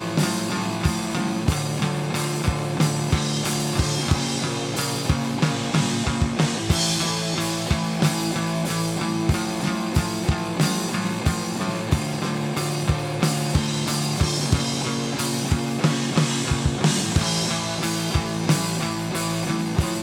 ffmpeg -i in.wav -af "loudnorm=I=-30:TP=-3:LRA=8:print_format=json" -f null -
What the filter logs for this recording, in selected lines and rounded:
"input_i" : "-23.2",
"input_tp" : "-4.6",
"input_lra" : "1.3",
"input_thresh" : "-33.2",